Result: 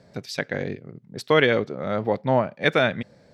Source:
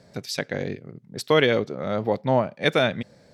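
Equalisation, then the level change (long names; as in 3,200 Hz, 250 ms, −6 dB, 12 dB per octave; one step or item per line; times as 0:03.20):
high-shelf EQ 5,400 Hz −8 dB
dynamic equaliser 1,700 Hz, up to +4 dB, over −37 dBFS, Q 1.3
0.0 dB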